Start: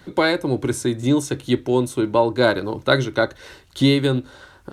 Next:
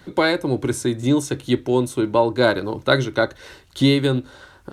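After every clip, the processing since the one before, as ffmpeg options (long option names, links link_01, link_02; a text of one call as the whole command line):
ffmpeg -i in.wav -af anull out.wav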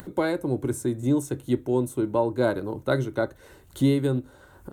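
ffmpeg -i in.wav -af "equalizer=frequency=4300:width=0.32:gain=-12,acompressor=mode=upward:threshold=-33dB:ratio=2.5,aexciter=amount=1.3:drive=9.3:freq=6900,volume=-4dB" out.wav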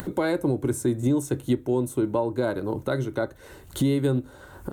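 ffmpeg -i in.wav -af "alimiter=limit=-21dB:level=0:latency=1:release=471,volume=7dB" out.wav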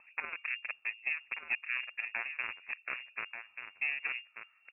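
ffmpeg -i in.wav -af "aeval=exprs='0.211*(cos(1*acos(clip(val(0)/0.211,-1,1)))-cos(1*PI/2))+0.0841*(cos(3*acos(clip(val(0)/0.211,-1,1)))-cos(3*PI/2))':channel_layout=same,aecho=1:1:1186:0.398,lowpass=frequency=2400:width_type=q:width=0.5098,lowpass=frequency=2400:width_type=q:width=0.6013,lowpass=frequency=2400:width_type=q:width=0.9,lowpass=frequency=2400:width_type=q:width=2.563,afreqshift=-2800,volume=-9dB" out.wav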